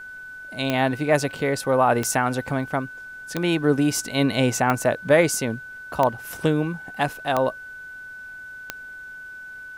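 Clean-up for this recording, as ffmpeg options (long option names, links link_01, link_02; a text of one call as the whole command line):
ffmpeg -i in.wav -af "adeclick=threshold=4,bandreject=frequency=1500:width=30,agate=range=-21dB:threshold=-31dB" out.wav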